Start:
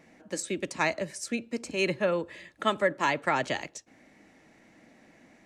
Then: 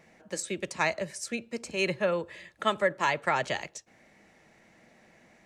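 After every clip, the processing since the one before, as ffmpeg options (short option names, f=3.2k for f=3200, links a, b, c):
-af "equalizer=f=280:t=o:w=0.35:g=-12"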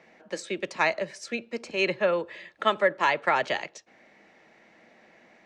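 -filter_complex "[0:a]acrossover=split=210 5500:gain=0.2 1 0.1[a][b][c];[a][b][c]amix=inputs=3:normalize=0,volume=3.5dB"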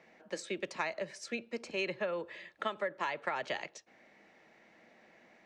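-af "acompressor=threshold=-26dB:ratio=10,volume=-5dB"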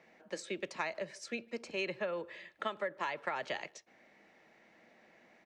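-filter_complex "[0:a]asplit=2[a][b];[b]adelay=150,highpass=300,lowpass=3.4k,asoftclip=type=hard:threshold=-29.5dB,volume=-27dB[c];[a][c]amix=inputs=2:normalize=0,volume=-1.5dB"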